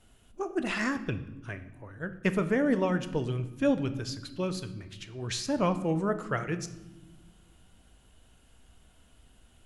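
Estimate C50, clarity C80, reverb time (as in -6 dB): 13.0 dB, 15.5 dB, not exponential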